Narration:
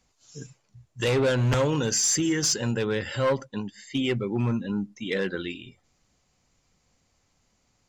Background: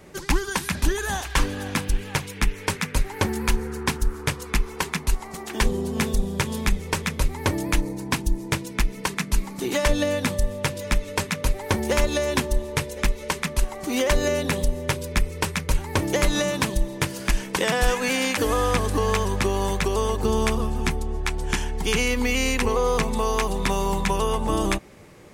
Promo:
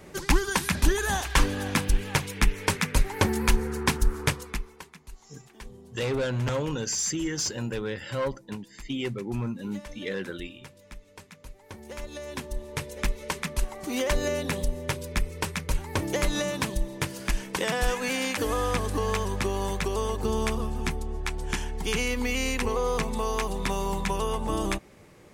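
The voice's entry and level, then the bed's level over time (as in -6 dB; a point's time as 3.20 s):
4.95 s, -5.0 dB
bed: 4.28 s 0 dB
4.94 s -22.5 dB
11.57 s -22.5 dB
13.00 s -5 dB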